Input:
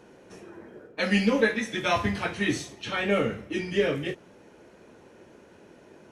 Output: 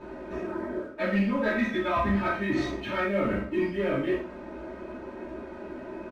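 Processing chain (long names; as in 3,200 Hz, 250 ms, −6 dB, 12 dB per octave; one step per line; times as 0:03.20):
low-pass filter 1,800 Hz 12 dB per octave
comb filter 3.2 ms, depth 67%
reversed playback
downward compressor 6 to 1, threshold −35 dBFS, peak gain reduction 16 dB
reversed playback
leveller curve on the samples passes 1
reverb whose tail is shaped and stops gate 140 ms falling, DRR −7 dB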